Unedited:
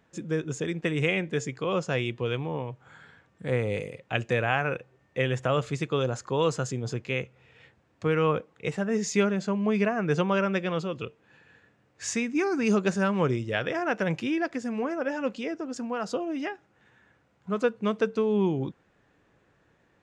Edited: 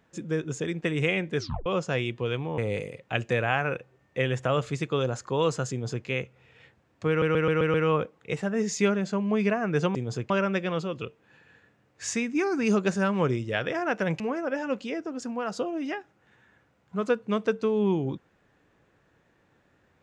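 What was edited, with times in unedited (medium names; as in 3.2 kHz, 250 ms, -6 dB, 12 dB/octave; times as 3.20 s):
1.37 s: tape stop 0.29 s
2.58–3.58 s: delete
6.71–7.06 s: copy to 10.30 s
8.09 s: stutter 0.13 s, 6 plays
14.20–14.74 s: delete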